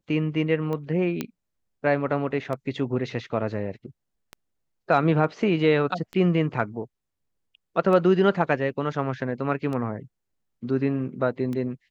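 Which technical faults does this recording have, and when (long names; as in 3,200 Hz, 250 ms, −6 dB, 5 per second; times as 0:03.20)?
scratch tick 33 1/3 rpm −20 dBFS
0:01.21: click −13 dBFS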